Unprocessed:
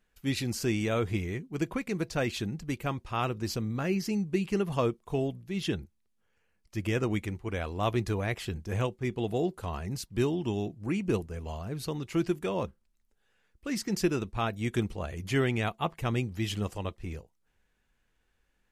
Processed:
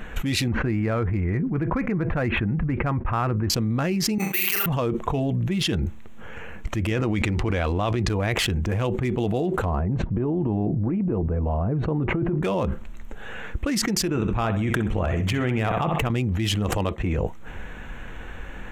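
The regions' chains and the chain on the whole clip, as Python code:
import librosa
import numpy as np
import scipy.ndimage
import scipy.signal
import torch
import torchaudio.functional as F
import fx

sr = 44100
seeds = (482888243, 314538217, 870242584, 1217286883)

y = fx.chain(x, sr, fx.lowpass(hz=1900.0, slope=24),
    fx.peak_eq(hz=450.0, db=-5.5, octaves=2.6), at=(0.48, 3.5))
y = fx.chain(y, sr, fx.highpass(hz=1300.0, slope=12),
    fx.room_flutter(wall_m=7.1, rt60_s=0.48),
    fx.resample_bad(factor=3, down='none', up='zero_stuff'), at=(4.18, 4.66))
y = fx.chain(y, sr, fx.lowpass(hz=5500.0, slope=12),
    fx.env_flatten(amount_pct=100), at=(6.91, 8.09))
y = fx.chain(y, sr, fx.lowpass(hz=1000.0, slope=12),
    fx.over_compress(threshold_db=-32.0, ratio=-0.5), at=(9.65, 12.43))
y = fx.chain(y, sr, fx.level_steps(step_db=22),
    fx.echo_feedback(ms=63, feedback_pct=34, wet_db=-10.0), at=(14.09, 16.1))
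y = fx.chain(y, sr, fx.highpass(hz=93.0, slope=6),
    fx.upward_expand(threshold_db=-52.0, expansion=1.5), at=(16.78, 17.18))
y = fx.wiener(y, sr, points=9)
y = fx.notch(y, sr, hz=400.0, q=12.0)
y = fx.env_flatten(y, sr, amount_pct=100)
y = y * 10.0 ** (-1.5 / 20.0)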